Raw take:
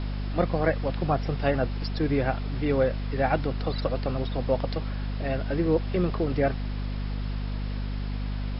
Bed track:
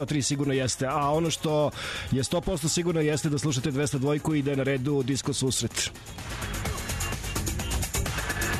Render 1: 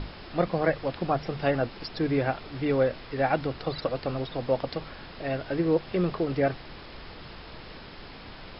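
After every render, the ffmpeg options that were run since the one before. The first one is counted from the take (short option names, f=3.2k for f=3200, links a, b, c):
-af "bandreject=f=50:t=h:w=6,bandreject=f=100:t=h:w=6,bandreject=f=150:t=h:w=6,bandreject=f=200:t=h:w=6,bandreject=f=250:t=h:w=6"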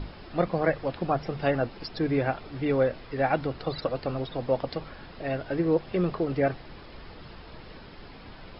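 -af "afftdn=nr=6:nf=-45"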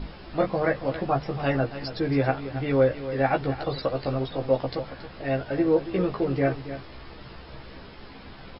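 -filter_complex "[0:a]asplit=2[a][b];[b]adelay=15,volume=-3dB[c];[a][c]amix=inputs=2:normalize=0,aecho=1:1:277:0.237"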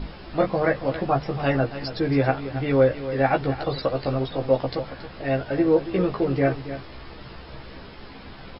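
-af "volume=2.5dB"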